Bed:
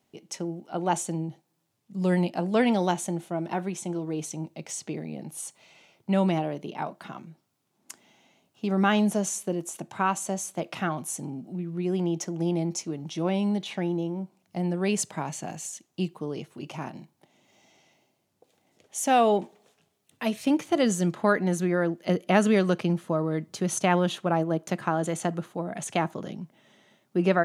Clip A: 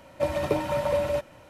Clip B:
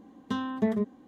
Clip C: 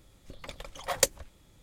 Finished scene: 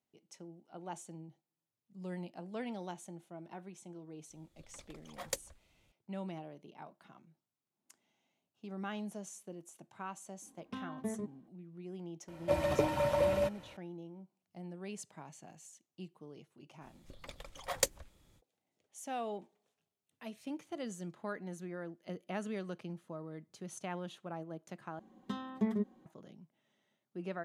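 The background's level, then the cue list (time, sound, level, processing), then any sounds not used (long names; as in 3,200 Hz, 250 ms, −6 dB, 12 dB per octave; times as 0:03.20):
bed −18.5 dB
0:04.30: mix in C −13.5 dB
0:10.42: mix in B −12.5 dB + low-pass that shuts in the quiet parts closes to 2,100 Hz, open at −22 dBFS
0:12.28: mix in A −4.5 dB
0:16.80: mix in C −6.5 dB, fades 0.05 s
0:24.99: overwrite with B −8.5 dB + comb filter 5.4 ms, depth 62%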